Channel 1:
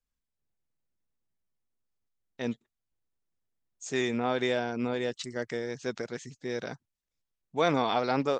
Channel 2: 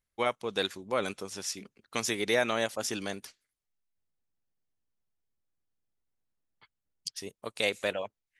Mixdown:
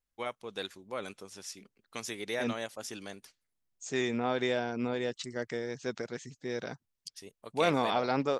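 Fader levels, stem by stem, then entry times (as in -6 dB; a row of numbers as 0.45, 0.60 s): -2.0, -8.0 dB; 0.00, 0.00 s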